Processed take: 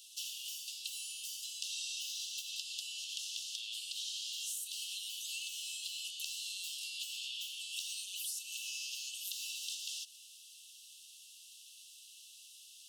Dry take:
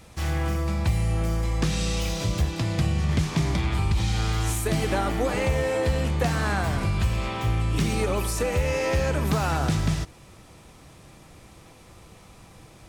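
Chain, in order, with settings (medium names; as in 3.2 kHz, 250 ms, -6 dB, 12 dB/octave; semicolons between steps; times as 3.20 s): Chebyshev high-pass 2.7 kHz, order 10; compression 6:1, threshold -42 dBFS, peak gain reduction 11.5 dB; trim +3.5 dB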